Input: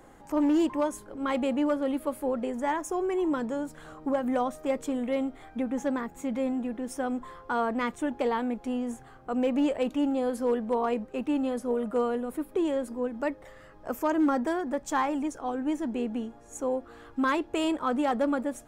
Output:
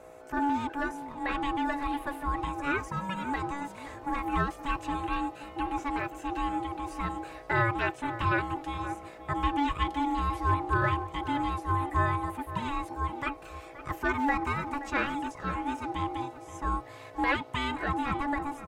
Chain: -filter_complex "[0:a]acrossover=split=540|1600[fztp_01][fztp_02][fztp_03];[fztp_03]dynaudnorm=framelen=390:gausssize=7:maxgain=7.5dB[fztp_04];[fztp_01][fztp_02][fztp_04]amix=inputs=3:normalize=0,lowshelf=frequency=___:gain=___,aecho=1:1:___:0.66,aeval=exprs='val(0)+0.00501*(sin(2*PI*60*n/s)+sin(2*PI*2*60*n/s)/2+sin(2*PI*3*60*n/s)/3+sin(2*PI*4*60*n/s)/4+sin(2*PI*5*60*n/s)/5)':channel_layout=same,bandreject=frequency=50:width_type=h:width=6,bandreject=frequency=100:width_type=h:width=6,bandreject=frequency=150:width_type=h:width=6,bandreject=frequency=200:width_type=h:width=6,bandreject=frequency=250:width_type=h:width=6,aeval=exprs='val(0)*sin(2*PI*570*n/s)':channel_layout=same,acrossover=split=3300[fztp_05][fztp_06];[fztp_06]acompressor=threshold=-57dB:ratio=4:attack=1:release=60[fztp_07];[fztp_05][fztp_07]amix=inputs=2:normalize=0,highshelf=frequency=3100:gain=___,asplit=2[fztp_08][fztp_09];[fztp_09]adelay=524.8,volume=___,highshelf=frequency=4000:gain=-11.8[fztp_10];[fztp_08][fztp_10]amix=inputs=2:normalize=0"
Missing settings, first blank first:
140, -11, 4.3, 3, -13dB